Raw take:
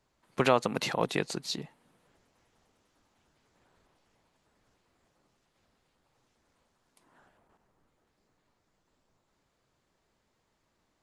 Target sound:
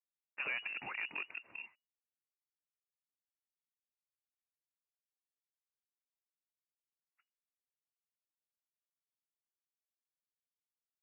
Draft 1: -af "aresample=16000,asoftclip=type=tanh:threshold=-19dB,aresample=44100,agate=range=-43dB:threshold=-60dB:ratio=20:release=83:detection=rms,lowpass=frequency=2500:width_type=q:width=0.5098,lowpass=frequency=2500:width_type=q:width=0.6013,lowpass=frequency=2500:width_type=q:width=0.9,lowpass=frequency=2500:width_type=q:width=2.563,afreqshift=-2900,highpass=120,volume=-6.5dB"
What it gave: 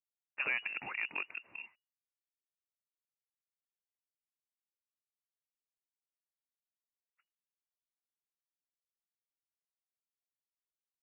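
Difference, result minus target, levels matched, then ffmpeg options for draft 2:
soft clipping: distortion −5 dB
-af "aresample=16000,asoftclip=type=tanh:threshold=-26.5dB,aresample=44100,agate=range=-43dB:threshold=-60dB:ratio=20:release=83:detection=rms,lowpass=frequency=2500:width_type=q:width=0.5098,lowpass=frequency=2500:width_type=q:width=0.6013,lowpass=frequency=2500:width_type=q:width=0.9,lowpass=frequency=2500:width_type=q:width=2.563,afreqshift=-2900,highpass=120,volume=-6.5dB"

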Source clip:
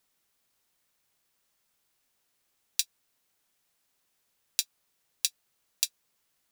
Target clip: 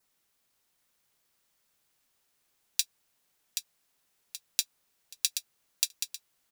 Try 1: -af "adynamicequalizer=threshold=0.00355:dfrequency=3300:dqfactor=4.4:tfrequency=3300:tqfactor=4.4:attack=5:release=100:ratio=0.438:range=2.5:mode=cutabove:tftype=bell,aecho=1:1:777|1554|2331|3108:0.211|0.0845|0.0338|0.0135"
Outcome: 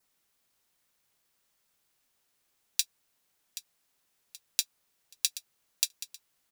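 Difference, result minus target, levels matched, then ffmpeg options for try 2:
echo-to-direct −7 dB
-af "adynamicequalizer=threshold=0.00355:dfrequency=3300:dqfactor=4.4:tfrequency=3300:tqfactor=4.4:attack=5:release=100:ratio=0.438:range=2.5:mode=cutabove:tftype=bell,aecho=1:1:777|1554|2331|3108|3885:0.473|0.189|0.0757|0.0303|0.0121"

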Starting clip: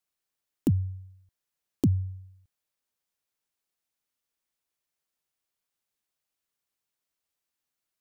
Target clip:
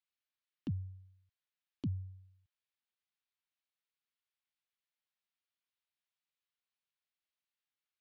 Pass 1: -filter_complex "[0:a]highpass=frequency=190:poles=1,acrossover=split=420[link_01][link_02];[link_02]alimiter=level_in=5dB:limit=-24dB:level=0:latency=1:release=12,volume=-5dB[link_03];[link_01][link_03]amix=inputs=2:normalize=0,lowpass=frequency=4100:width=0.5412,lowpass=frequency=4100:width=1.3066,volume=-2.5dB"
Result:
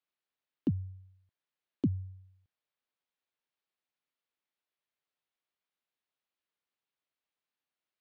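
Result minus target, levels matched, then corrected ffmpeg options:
500 Hz band +6.5 dB
-filter_complex "[0:a]highpass=frequency=190:poles=1,equalizer=frequency=410:width_type=o:width=2.4:gain=-14.5,acrossover=split=420[link_01][link_02];[link_02]alimiter=level_in=5dB:limit=-24dB:level=0:latency=1:release=12,volume=-5dB[link_03];[link_01][link_03]amix=inputs=2:normalize=0,lowpass=frequency=4100:width=0.5412,lowpass=frequency=4100:width=1.3066,volume=-2.5dB"

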